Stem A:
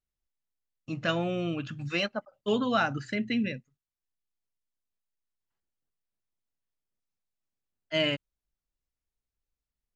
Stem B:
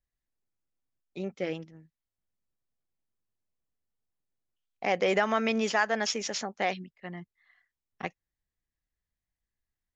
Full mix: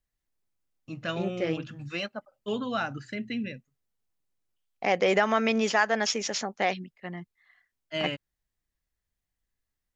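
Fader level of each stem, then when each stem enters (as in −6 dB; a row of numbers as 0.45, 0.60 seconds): −4.0, +2.5 decibels; 0.00, 0.00 seconds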